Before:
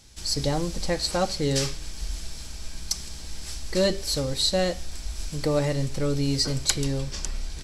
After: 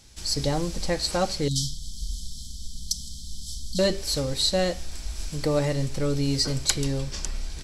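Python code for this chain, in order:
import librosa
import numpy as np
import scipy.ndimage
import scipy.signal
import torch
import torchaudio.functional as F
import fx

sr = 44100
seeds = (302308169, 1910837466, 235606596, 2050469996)

y = fx.brickwall_bandstop(x, sr, low_hz=270.0, high_hz=3000.0, at=(1.48, 3.79))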